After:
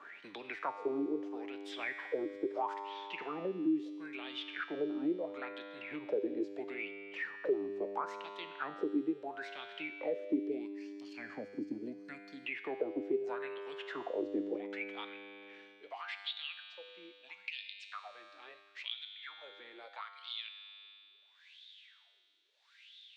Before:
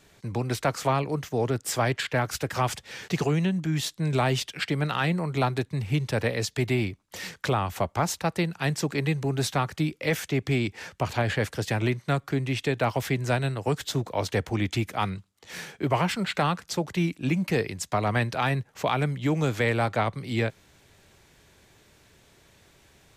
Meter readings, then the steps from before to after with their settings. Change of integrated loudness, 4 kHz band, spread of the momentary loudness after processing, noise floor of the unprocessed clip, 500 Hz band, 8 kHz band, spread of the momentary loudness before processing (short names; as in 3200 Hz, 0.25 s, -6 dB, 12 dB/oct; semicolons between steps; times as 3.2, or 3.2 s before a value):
-12.5 dB, -11.0 dB, 16 LU, -61 dBFS, -10.0 dB, under -30 dB, 5 LU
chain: high-pass sweep 310 Hz -> 3900 Hz, 14.46–15.73; high shelf 5900 Hz -11.5 dB; spectral gain 10.66–12.44, 290–4100 Hz -16 dB; in parallel at -1 dB: limiter -19.5 dBFS, peak gain reduction 10 dB; on the sum: wah 0.75 Hz 300–3600 Hz, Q 9.6; low shelf 230 Hz +8.5 dB; resonator 100 Hz, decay 1.6 s, harmonics all, mix 80%; three-band squash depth 70%; gain +7 dB